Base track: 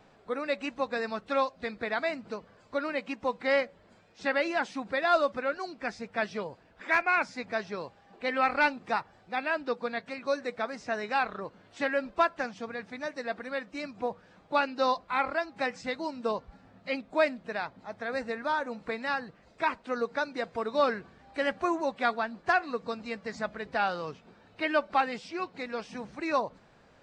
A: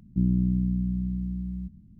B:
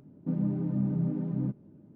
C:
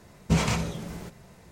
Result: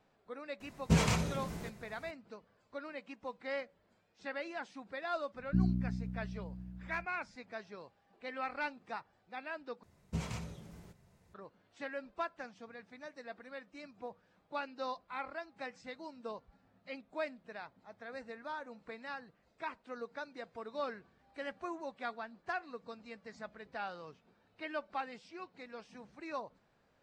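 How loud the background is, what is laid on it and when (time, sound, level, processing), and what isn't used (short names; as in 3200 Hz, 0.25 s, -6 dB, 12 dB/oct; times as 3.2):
base track -13 dB
0.6 add C -4.5 dB
5.37 add A -5 dB + reverb removal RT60 1.8 s
9.83 replace with C -17 dB + bell 86 Hz +5.5 dB 1.4 oct
not used: B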